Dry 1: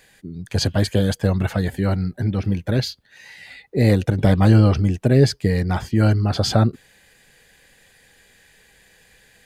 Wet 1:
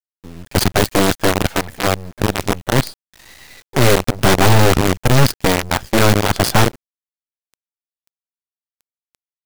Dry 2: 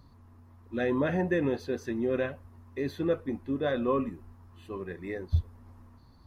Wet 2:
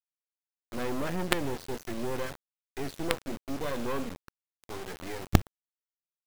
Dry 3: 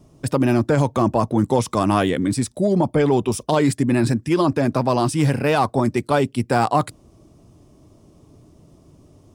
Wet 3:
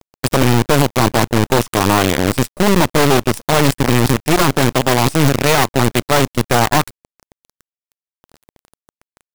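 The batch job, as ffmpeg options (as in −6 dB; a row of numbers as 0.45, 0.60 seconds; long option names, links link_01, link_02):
-af "acrusher=bits=4:dc=4:mix=0:aa=0.000001,aeval=exprs='0.794*(cos(1*acos(clip(val(0)/0.794,-1,1)))-cos(1*PI/2))+0.0794*(cos(3*acos(clip(val(0)/0.794,-1,1)))-cos(3*PI/2))+0.282*(cos(4*acos(clip(val(0)/0.794,-1,1)))-cos(4*PI/2))':channel_layout=same,acontrast=83,volume=-1dB"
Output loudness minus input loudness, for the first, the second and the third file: +3.5, −2.5, +5.0 LU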